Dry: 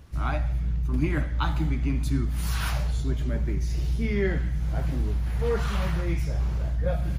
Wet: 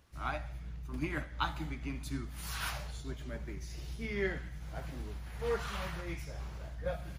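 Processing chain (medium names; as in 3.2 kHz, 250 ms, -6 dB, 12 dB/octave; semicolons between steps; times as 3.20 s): bass shelf 350 Hz -11 dB; upward expansion 1.5:1, over -39 dBFS; trim -2 dB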